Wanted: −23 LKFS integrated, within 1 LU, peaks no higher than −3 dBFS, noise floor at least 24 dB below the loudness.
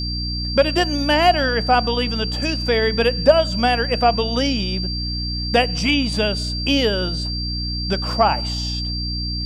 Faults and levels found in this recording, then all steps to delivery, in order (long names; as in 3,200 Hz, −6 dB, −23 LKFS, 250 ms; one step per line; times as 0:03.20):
mains hum 60 Hz; hum harmonics up to 300 Hz; level of the hum −24 dBFS; interfering tone 4,700 Hz; level of the tone −26 dBFS; integrated loudness −19.5 LKFS; sample peak −1.5 dBFS; target loudness −23.0 LKFS
→ hum removal 60 Hz, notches 5
notch filter 4,700 Hz, Q 30
level −3.5 dB